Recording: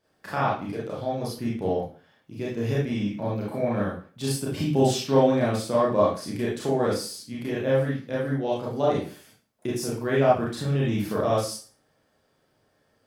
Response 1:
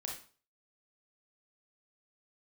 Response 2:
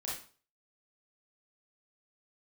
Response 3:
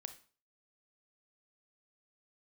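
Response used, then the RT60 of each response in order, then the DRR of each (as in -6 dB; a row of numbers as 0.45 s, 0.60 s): 2; 0.40 s, 0.40 s, 0.40 s; -1.0 dB, -6.5 dB, 8.5 dB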